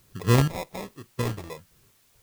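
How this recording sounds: phasing stages 2, 1.2 Hz, lowest notch 220–1300 Hz; aliases and images of a low sample rate 1.5 kHz, jitter 0%; random-step tremolo 4.2 Hz, depth 90%; a quantiser's noise floor 12-bit, dither triangular

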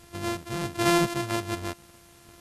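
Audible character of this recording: a buzz of ramps at a fixed pitch in blocks of 128 samples; random-step tremolo 3.5 Hz; a quantiser's noise floor 10-bit, dither triangular; MP2

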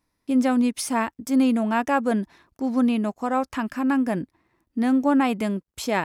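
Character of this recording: noise floor -78 dBFS; spectral tilt -5.0 dB/octave

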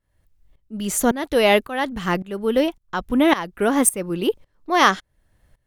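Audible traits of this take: tremolo saw up 1.8 Hz, depth 90%

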